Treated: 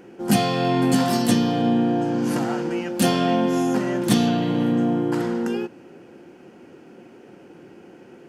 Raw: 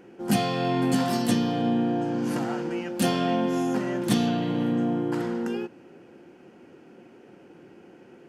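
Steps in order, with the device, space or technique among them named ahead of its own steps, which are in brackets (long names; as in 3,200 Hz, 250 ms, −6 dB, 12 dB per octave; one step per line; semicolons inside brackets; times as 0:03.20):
exciter from parts (in parallel at −11 dB: high-pass filter 3,400 Hz 12 dB per octave + soft clipping −30 dBFS, distortion −12 dB)
on the sum: level +4.5 dB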